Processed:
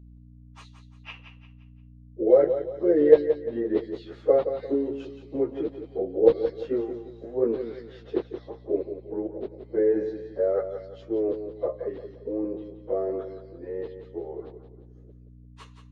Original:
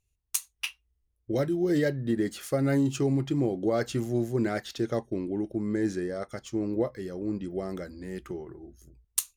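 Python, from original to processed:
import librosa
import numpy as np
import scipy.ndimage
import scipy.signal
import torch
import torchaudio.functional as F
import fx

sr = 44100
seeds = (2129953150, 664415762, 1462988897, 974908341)

y = scipy.signal.sosfilt(scipy.signal.butter(2, 46.0, 'highpass', fs=sr, output='sos'), x)
y = fx.high_shelf(y, sr, hz=3000.0, db=-9.0)
y = fx.filter_lfo_highpass(y, sr, shape='square', hz=2.7, low_hz=470.0, high_hz=3900.0, q=4.2)
y = fx.stretch_vocoder_free(y, sr, factor=1.7)
y = fx.add_hum(y, sr, base_hz=60, snr_db=22)
y = fx.spacing_loss(y, sr, db_at_10k=41)
y = fx.echo_feedback(y, sr, ms=174, feedback_pct=37, wet_db=-9.5)
y = F.gain(torch.from_numpy(y), 6.5).numpy()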